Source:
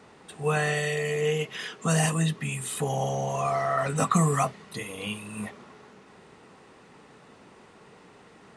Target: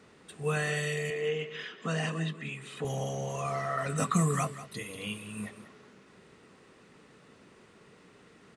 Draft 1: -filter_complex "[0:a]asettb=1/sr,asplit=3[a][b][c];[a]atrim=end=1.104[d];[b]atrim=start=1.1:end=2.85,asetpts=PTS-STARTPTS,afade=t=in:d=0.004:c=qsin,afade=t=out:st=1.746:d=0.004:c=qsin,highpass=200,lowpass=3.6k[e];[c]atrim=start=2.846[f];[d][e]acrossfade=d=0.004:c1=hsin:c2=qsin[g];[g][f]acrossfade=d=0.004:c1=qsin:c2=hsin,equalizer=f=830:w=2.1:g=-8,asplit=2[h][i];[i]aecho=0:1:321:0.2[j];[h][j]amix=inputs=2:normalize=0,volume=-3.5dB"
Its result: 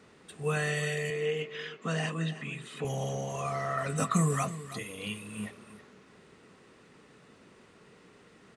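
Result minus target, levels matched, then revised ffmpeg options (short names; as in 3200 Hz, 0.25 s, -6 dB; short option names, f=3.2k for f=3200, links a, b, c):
echo 0.132 s late
-filter_complex "[0:a]asettb=1/sr,asplit=3[a][b][c];[a]atrim=end=1.104[d];[b]atrim=start=1.1:end=2.85,asetpts=PTS-STARTPTS,afade=t=in:d=0.004:c=qsin,afade=t=out:st=1.746:d=0.004:c=qsin,highpass=200,lowpass=3.6k[e];[c]atrim=start=2.846[f];[d][e]acrossfade=d=0.004:c1=hsin:c2=qsin[g];[g][f]acrossfade=d=0.004:c1=qsin:c2=hsin,equalizer=f=830:w=2.1:g=-8,asplit=2[h][i];[i]aecho=0:1:189:0.2[j];[h][j]amix=inputs=2:normalize=0,volume=-3.5dB"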